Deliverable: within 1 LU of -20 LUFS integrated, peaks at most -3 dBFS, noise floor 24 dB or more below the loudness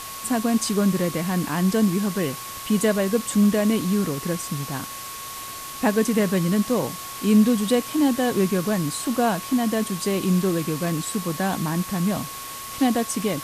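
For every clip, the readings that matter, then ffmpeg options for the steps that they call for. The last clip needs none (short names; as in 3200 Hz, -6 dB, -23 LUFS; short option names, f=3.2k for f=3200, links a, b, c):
steady tone 1100 Hz; tone level -37 dBFS; noise floor -35 dBFS; noise floor target -47 dBFS; loudness -23.0 LUFS; peak -7.5 dBFS; loudness target -20.0 LUFS
-> -af "bandreject=f=1.1k:w=30"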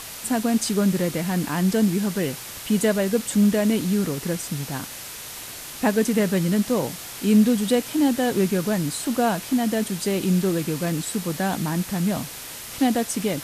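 steady tone none; noise floor -37 dBFS; noise floor target -47 dBFS
-> -af "afftdn=nr=10:nf=-37"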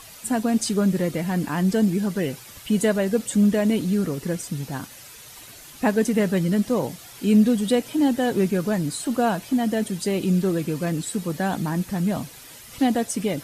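noise floor -44 dBFS; noise floor target -47 dBFS
-> -af "afftdn=nr=6:nf=-44"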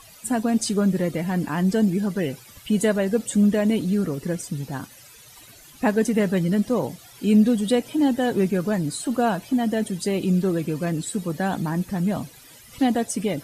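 noise floor -48 dBFS; loudness -23.0 LUFS; peak -8.0 dBFS; loudness target -20.0 LUFS
-> -af "volume=3dB"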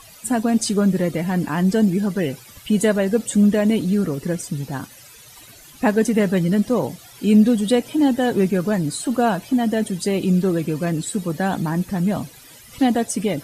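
loudness -20.0 LUFS; peak -5.0 dBFS; noise floor -45 dBFS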